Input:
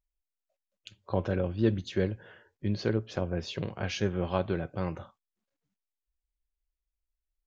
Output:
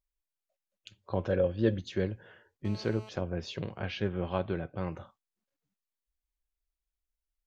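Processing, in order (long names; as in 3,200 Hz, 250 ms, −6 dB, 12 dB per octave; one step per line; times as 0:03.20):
0:01.29–0:01.80: hollow resonant body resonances 520/1,700/3,200 Hz, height 12 dB
0:02.65–0:03.09: phone interference −47 dBFS
0:03.81–0:04.92: low-pass filter 4,100 Hz 24 dB per octave
level −2.5 dB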